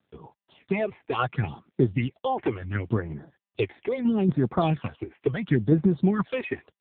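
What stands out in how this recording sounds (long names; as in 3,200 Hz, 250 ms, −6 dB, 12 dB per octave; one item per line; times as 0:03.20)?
phaser sweep stages 8, 0.73 Hz, lowest notch 160–3,100 Hz
a quantiser's noise floor 12 bits, dither none
tremolo saw down 4.2 Hz, depth 45%
AMR narrowband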